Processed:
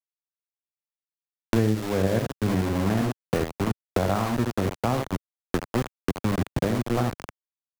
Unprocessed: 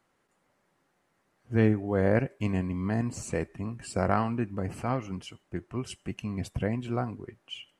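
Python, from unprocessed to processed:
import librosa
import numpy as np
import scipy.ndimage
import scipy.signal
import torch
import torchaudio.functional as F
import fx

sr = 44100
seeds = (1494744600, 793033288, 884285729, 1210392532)

p1 = scipy.signal.sosfilt(scipy.signal.butter(2, 1300.0, 'lowpass', fs=sr, output='sos'), x)
p2 = p1 + 10.0 ** (-6.0 / 20.0) * np.pad(p1, (int(74 * sr / 1000.0), 0))[:len(p1)]
p3 = fx.level_steps(p2, sr, step_db=11)
p4 = p2 + F.gain(torch.from_numpy(p3), 0.5).numpy()
p5 = np.where(np.abs(p4) >= 10.0 ** (-25.5 / 20.0), p4, 0.0)
y = fx.band_squash(p5, sr, depth_pct=100)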